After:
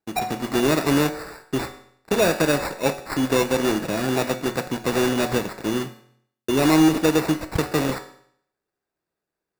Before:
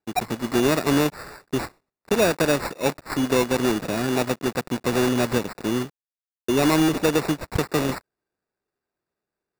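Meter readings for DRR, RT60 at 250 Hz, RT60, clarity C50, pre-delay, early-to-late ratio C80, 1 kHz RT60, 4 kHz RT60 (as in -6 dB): 6.5 dB, 0.65 s, 0.65 s, 11.5 dB, 5 ms, 14.5 dB, 0.65 s, 0.65 s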